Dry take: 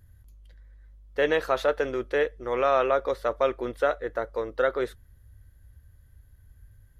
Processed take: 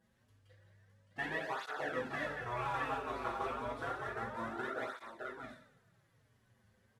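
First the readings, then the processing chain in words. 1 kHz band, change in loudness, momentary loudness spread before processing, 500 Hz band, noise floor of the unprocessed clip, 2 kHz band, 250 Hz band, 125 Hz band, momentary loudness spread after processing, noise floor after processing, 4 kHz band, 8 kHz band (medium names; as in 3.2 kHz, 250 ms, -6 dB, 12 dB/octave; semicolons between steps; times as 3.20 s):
-8.5 dB, -13.0 dB, 8 LU, -18.0 dB, -57 dBFS, -7.5 dB, -10.0 dB, -4.5 dB, 9 LU, -73 dBFS, -10.5 dB, no reading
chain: CVSD coder 64 kbps; low-pass 1.6 kHz 6 dB/octave; spectral gate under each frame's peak -10 dB weak; bass shelf 110 Hz -7 dB; compression, threshold -34 dBFS, peak gain reduction 7.5 dB; multi-tap echo 171/613 ms -7/-6 dB; two-slope reverb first 0.51 s, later 1.5 s, DRR -3 dB; cancelling through-zero flanger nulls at 0.3 Hz, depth 7.1 ms; trim -2 dB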